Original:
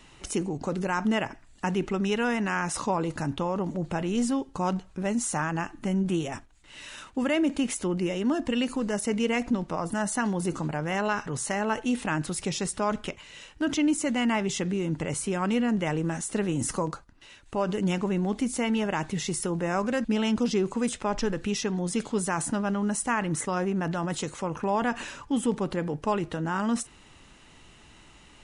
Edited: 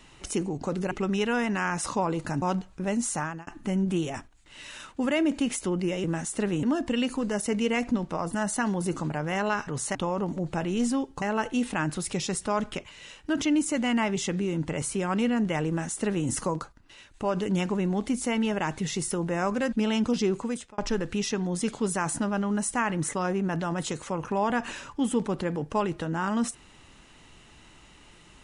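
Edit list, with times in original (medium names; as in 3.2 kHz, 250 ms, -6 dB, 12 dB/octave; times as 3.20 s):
0.91–1.82 s: delete
3.33–4.60 s: move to 11.54 s
5.21–5.65 s: fade out equal-power
16.00–16.59 s: copy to 8.22 s
20.68–21.10 s: fade out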